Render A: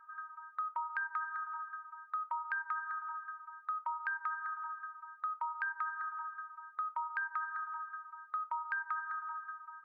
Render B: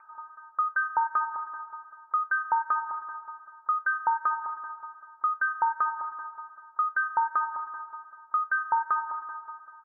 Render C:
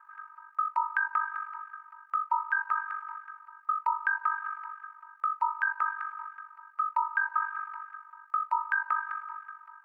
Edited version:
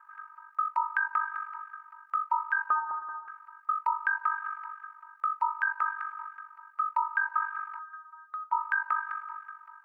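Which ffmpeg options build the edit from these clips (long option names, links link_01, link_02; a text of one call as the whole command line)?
ffmpeg -i take0.wav -i take1.wav -i take2.wav -filter_complex "[2:a]asplit=3[link_01][link_02][link_03];[link_01]atrim=end=2.702[link_04];[1:a]atrim=start=2.698:end=3.282[link_05];[link_02]atrim=start=3.278:end=7.792[link_06];[0:a]atrim=start=7.788:end=8.522[link_07];[link_03]atrim=start=8.518[link_08];[link_04][link_05]acrossfade=duration=0.004:curve1=hsin:curve2=hsin[link_09];[link_09][link_06]acrossfade=duration=0.004:curve1=hsin:curve2=hsin[link_10];[link_10][link_07]acrossfade=duration=0.004:curve1=hsin:curve2=hsin[link_11];[link_11][link_08]acrossfade=duration=0.004:curve1=hsin:curve2=hsin" out.wav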